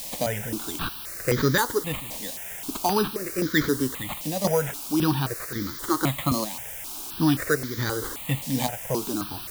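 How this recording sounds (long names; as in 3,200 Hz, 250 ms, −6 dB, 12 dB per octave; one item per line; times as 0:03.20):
aliases and images of a low sample rate 5,400 Hz, jitter 0%
chopped level 0.9 Hz, depth 60%, duty 80%
a quantiser's noise floor 6 bits, dither triangular
notches that jump at a steady rate 3.8 Hz 380–2,700 Hz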